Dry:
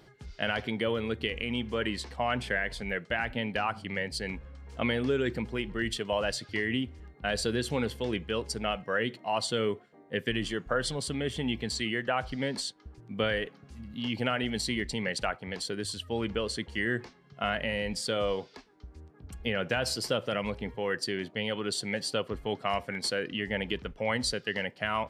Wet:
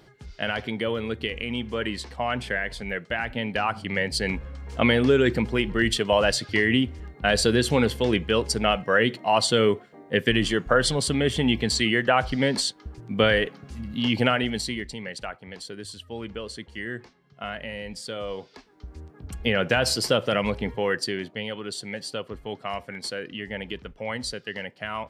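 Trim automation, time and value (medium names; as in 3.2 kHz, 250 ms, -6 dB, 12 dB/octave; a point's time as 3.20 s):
3.26 s +2.5 dB
4.29 s +9 dB
14.22 s +9 dB
14.99 s -3.5 dB
18.26 s -3.5 dB
18.92 s +7.5 dB
20.77 s +7.5 dB
21.60 s -1.5 dB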